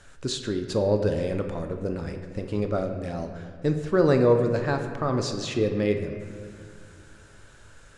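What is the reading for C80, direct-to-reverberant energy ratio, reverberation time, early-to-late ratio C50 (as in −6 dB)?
8.5 dB, 5.0 dB, 2.2 s, 7.0 dB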